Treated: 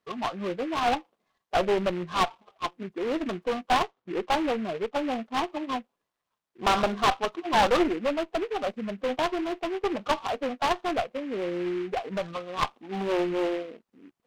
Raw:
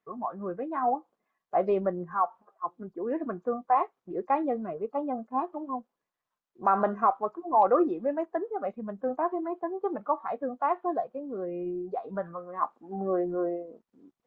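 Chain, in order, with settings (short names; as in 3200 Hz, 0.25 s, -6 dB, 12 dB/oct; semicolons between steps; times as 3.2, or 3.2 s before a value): 3.72–4.96 steep low-pass 2300 Hz 48 dB/oct; one-sided clip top -30 dBFS; noise-modulated delay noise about 1800 Hz, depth 0.066 ms; gain +4 dB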